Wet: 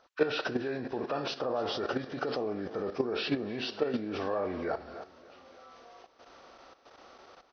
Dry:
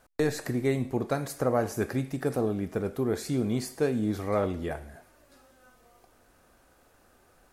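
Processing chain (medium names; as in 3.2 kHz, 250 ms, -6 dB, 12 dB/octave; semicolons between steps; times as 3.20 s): knee-point frequency compression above 1 kHz 1.5:1; high-pass 45 Hz 6 dB/octave; treble shelf 3.5 kHz +6.5 dB; in parallel at +2 dB: volume shaper 89 bpm, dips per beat 1, -20 dB, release 175 ms; on the sum: peak limiter -16 dBFS, peak gain reduction 10 dB; feedback delay 293 ms, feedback 45%, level -16.5 dB; level held to a coarse grid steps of 11 dB; tone controls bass -15 dB, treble -14 dB; trim +4 dB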